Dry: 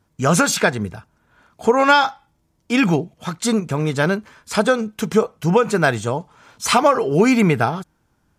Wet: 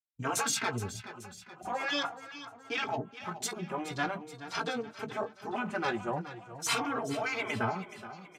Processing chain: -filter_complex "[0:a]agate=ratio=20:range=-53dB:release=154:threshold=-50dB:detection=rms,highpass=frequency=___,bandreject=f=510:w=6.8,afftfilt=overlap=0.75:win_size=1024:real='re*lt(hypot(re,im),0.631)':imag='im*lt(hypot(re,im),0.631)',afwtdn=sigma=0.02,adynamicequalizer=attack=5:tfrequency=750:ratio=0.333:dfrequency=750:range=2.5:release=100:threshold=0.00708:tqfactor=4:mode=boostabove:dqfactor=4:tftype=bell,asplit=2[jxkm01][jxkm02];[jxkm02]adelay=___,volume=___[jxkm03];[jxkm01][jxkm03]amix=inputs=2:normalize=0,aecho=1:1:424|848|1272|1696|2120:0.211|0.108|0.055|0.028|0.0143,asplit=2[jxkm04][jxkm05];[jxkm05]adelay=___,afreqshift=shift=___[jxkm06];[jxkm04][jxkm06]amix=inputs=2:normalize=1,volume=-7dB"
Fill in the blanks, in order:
90, 17, -11.5dB, 3.8, -0.45